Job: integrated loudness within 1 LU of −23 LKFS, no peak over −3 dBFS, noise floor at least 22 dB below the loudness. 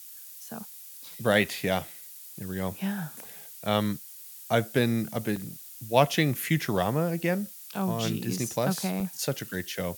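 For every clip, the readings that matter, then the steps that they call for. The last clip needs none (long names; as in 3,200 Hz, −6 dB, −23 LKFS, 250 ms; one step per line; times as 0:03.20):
number of dropouts 5; longest dropout 3.3 ms; background noise floor −46 dBFS; target noise floor −51 dBFS; integrated loudness −28.5 LKFS; sample peak −5.5 dBFS; target loudness −23.0 LKFS
→ repair the gap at 0:05.36/0:06.77/0:07.75/0:08.49/0:09.00, 3.3 ms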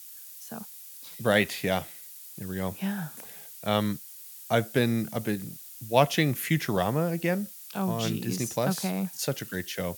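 number of dropouts 0; background noise floor −46 dBFS; target noise floor −51 dBFS
→ noise reduction from a noise print 6 dB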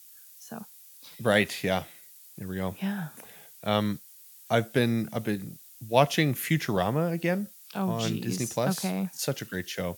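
background noise floor −52 dBFS; integrated loudness −28.5 LKFS; sample peak −5.5 dBFS; target loudness −23.0 LKFS
→ level +5.5 dB
brickwall limiter −3 dBFS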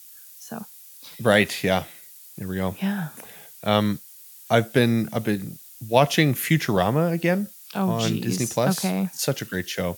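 integrated loudness −23.0 LKFS; sample peak −3.0 dBFS; background noise floor −46 dBFS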